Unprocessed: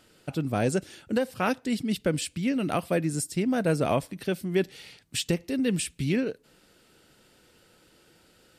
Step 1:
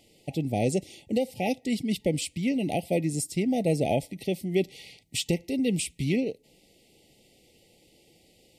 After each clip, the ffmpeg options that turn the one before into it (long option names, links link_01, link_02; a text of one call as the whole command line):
ffmpeg -i in.wav -af "afftfilt=real='re*(1-between(b*sr/4096,870,1900))':imag='im*(1-between(b*sr/4096,870,1900))':win_size=4096:overlap=0.75" out.wav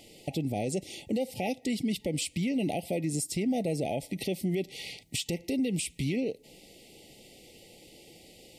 ffmpeg -i in.wav -filter_complex "[0:a]equalizer=frequency=82:width_type=o:width=2.4:gain=-3,asplit=2[link_01][link_02];[link_02]acompressor=threshold=-36dB:ratio=6,volume=2.5dB[link_03];[link_01][link_03]amix=inputs=2:normalize=0,alimiter=limit=-22dB:level=0:latency=1:release=125" out.wav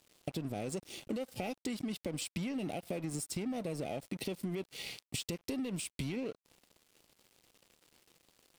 ffmpeg -i in.wav -af "acompressor=threshold=-35dB:ratio=4,aeval=exprs='sgn(val(0))*max(abs(val(0))-0.00355,0)':channel_layout=same,volume=1dB" out.wav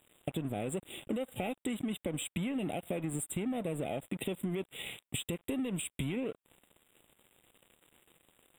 ffmpeg -i in.wav -af "asuperstop=centerf=5300:order=20:qfactor=1.5,volume=2.5dB" out.wav